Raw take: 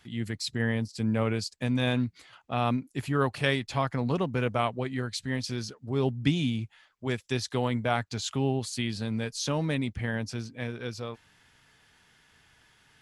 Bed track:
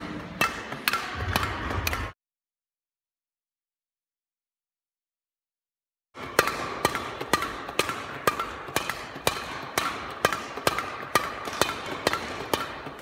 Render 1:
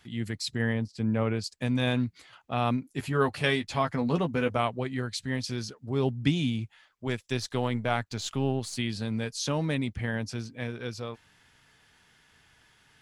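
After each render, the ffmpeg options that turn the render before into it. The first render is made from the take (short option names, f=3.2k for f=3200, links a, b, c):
-filter_complex "[0:a]asettb=1/sr,asplit=3[a][b][c];[a]atrim=end=0.734[d];[b]atrim=start=0.73:end=1.44,asetpts=PTS-STARTPTS,afade=t=in:d=0.004:c=qsin,afade=t=out:st=0.706:d=0.004:c=qsin,lowpass=f=2.5k:p=1[e];[c]atrim=start=1.436[f];[d][e]acrossfade=d=0.004:c1=hsin:c2=qsin[g];[g][f]acrossfade=d=0.004:c1=qsin:c2=hsin,asettb=1/sr,asplit=3[h][i][j];[h]atrim=end=2.884[k];[i]atrim=start=2.88:end=4.57,asetpts=PTS-STARTPTS,afade=t=in:d=0.004:c=qsin,afade=t=out:st=1.686:d=0.004:c=qsin,asplit=2[l][m];[m]adelay=12,volume=-6dB[n];[l][n]amix=inputs=2:normalize=0,atrim=end_sample=74529[o];[j]atrim=start=4.566[p];[k][o]acrossfade=d=0.004:c1=hsin:c2=qsin[q];[q][p]acrossfade=d=0.004:c1=qsin:c2=hsin,asettb=1/sr,asplit=3[r][s][t];[r]atrim=end=7.074[u];[s]atrim=start=7.07:end=8.77,asetpts=PTS-STARTPTS,afade=t=in:d=0.004:c=qsin,afade=t=out:st=1.696:d=0.004:c=qsin,aeval=exprs='if(lt(val(0),0),0.708*val(0),val(0))':c=same[v];[t]atrim=start=8.766[w];[u][v]acrossfade=d=0.004:c1=hsin:c2=qsin[x];[x][w]acrossfade=d=0.004:c1=qsin:c2=hsin"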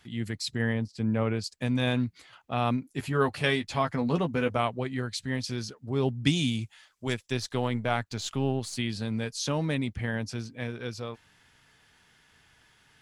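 -filter_complex "[0:a]asettb=1/sr,asplit=3[a][b][c];[a]atrim=end=6.264[d];[b]atrim=start=6.26:end=7.14,asetpts=PTS-STARTPTS,afade=t=in:d=0.004:c=qsin,afade=t=out:st=0.876:d=0.004:c=qsin,equalizer=f=8.2k:t=o:w=2:g=11.5[e];[c]atrim=start=7.136[f];[d][e]acrossfade=d=0.004:c1=hsin:c2=qsin[g];[g][f]acrossfade=d=0.004:c1=qsin:c2=hsin"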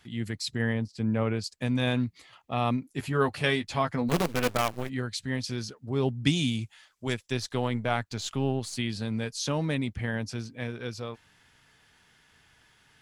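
-filter_complex "[0:a]asettb=1/sr,asplit=3[a][b][c];[a]atrim=end=2.064[d];[b]atrim=start=2.06:end=2.87,asetpts=PTS-STARTPTS,afade=t=in:d=0.004:c=qsin,afade=t=out:st=0.806:d=0.004:c=qsin,asuperstop=centerf=1500:order=4:qfactor=7.5[e];[c]atrim=start=2.866[f];[d][e]acrossfade=d=0.004:c1=hsin:c2=qsin[g];[g][f]acrossfade=d=0.004:c1=qsin:c2=hsin,asplit=3[h][i][j];[h]afade=t=out:st=4.08:d=0.02[k];[i]acrusher=bits=5:dc=4:mix=0:aa=0.000001,afade=t=in:st=4.08:d=0.02,afade=t=out:st=4.88:d=0.02[l];[j]afade=t=in:st=4.88:d=0.02[m];[k][l][m]amix=inputs=3:normalize=0"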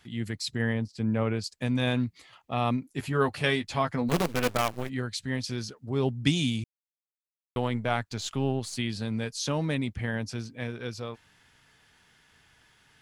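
-filter_complex "[0:a]asplit=3[a][b][c];[a]atrim=end=6.64,asetpts=PTS-STARTPTS,afade=t=out:st=6.636:d=0.004:c=hsin[d];[b]atrim=start=6.64:end=7.56,asetpts=PTS-STARTPTS,volume=0[e];[c]atrim=start=7.56,asetpts=PTS-STARTPTS,afade=t=in:d=0.004:c=hsin[f];[d][e][f]concat=n=3:v=0:a=1"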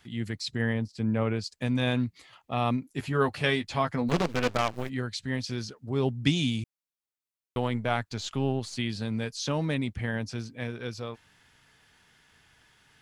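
-filter_complex "[0:a]acrossover=split=7200[a][b];[b]acompressor=threshold=-55dB:ratio=4:attack=1:release=60[c];[a][c]amix=inputs=2:normalize=0"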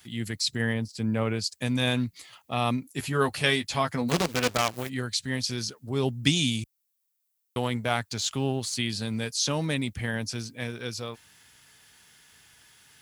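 -af "highpass=46,aemphasis=mode=production:type=75kf"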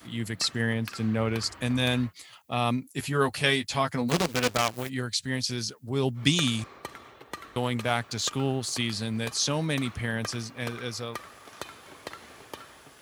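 -filter_complex "[1:a]volume=-15.5dB[a];[0:a][a]amix=inputs=2:normalize=0"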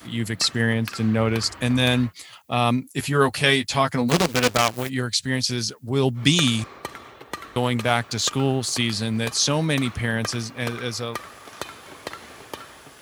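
-af "volume=6dB,alimiter=limit=-3dB:level=0:latency=1"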